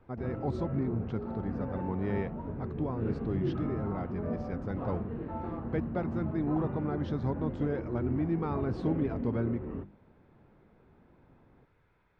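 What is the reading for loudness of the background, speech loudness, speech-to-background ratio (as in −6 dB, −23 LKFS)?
−37.5 LKFS, −35.0 LKFS, 2.5 dB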